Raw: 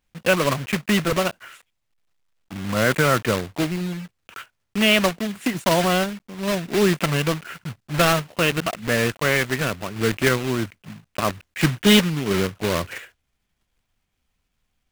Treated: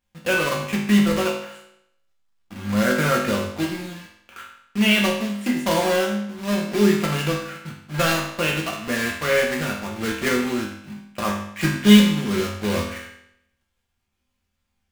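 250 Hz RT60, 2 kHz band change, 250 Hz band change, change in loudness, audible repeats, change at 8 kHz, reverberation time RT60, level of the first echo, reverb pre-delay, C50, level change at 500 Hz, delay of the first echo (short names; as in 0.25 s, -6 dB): 0.75 s, -1.0 dB, +3.0 dB, 0.0 dB, none, -1.5 dB, 0.75 s, none, 4 ms, 4.5 dB, -1.0 dB, none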